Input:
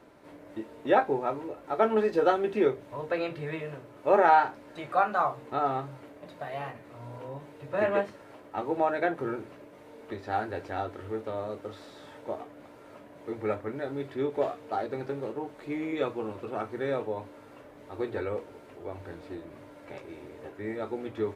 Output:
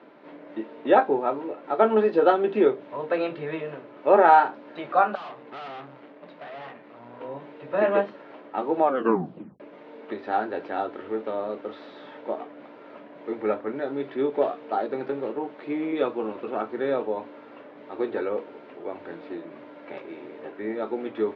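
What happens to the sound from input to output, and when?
0:05.15–0:07.21: tube saturation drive 41 dB, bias 0.65
0:08.83: tape stop 0.77 s
whole clip: high-pass filter 180 Hz 24 dB per octave; dynamic equaliser 2,100 Hz, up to −5 dB, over −49 dBFS, Q 2.3; low-pass filter 3,700 Hz 24 dB per octave; level +5 dB

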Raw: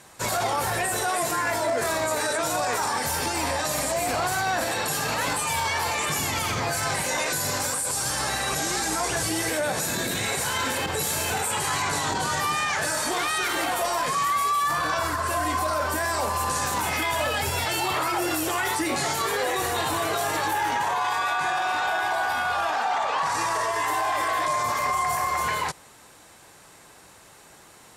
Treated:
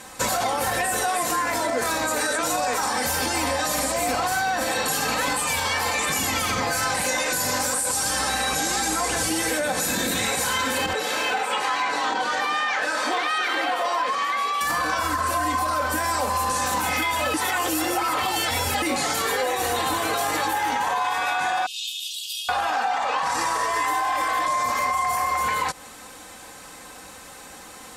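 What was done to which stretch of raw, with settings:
0:10.93–0:14.61: three-way crossover with the lows and the highs turned down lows −23 dB, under 270 Hz, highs −18 dB, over 4,700 Hz
0:17.34–0:18.82: reverse
0:21.66–0:22.49: Butterworth high-pass 2,800 Hz 96 dB per octave
whole clip: comb filter 3.9 ms, depth 58%; downward compressor, threshold −28 dBFS; level +7 dB

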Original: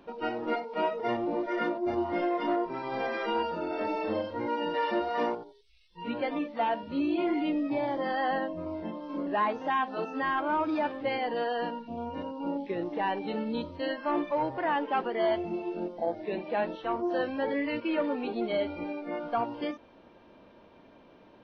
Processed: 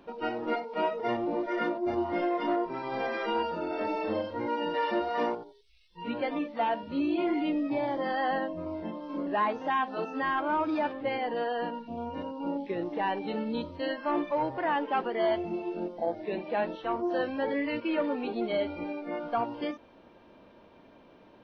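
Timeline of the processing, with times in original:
0:10.93–0:11.74: high-frequency loss of the air 130 metres

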